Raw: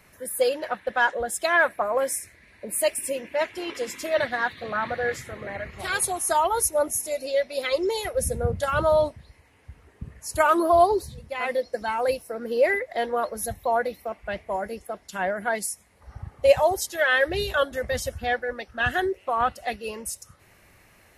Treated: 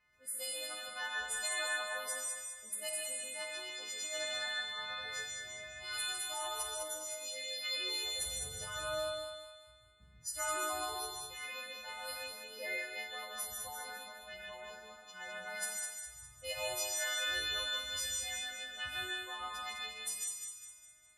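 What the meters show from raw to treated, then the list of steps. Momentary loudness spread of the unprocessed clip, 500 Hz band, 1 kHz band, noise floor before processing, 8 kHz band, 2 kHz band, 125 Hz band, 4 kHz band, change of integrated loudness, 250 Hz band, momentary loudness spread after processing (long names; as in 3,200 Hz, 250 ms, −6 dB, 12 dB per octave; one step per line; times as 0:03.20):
13 LU, −22.0 dB, −19.0 dB, −57 dBFS, −6.0 dB, −12.0 dB, −22.0 dB, −1.0 dB, −13.0 dB, −25.0 dB, 11 LU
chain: every partial snapped to a pitch grid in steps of 3 semitones
low-pass that shuts in the quiet parts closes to 1,900 Hz, open at −19.5 dBFS
guitar amp tone stack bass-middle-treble 5-5-5
treble cut that deepens with the level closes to 1,700 Hz, closed at −16 dBFS
feedback echo with a high-pass in the loop 204 ms, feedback 44%, high-pass 470 Hz, level −5 dB
reverb whose tail is shaped and stops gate 180 ms rising, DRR −2 dB
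level −8.5 dB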